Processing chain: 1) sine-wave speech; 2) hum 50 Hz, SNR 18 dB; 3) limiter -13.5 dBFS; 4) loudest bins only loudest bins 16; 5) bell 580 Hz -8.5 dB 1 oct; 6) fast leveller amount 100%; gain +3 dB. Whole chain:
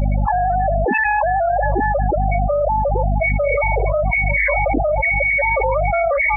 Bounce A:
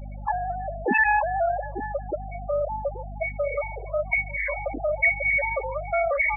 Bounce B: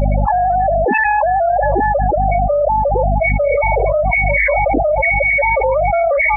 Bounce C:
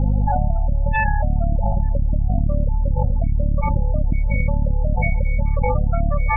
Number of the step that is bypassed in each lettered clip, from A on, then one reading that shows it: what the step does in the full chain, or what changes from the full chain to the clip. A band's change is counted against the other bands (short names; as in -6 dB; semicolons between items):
6, crest factor change +5.0 dB; 5, 125 Hz band -2.0 dB; 1, 125 Hz band +13.5 dB